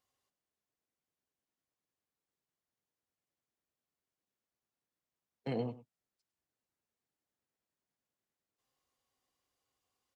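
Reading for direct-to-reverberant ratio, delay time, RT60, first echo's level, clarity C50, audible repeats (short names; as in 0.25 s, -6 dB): none, 0.101 s, none, -16.5 dB, none, 1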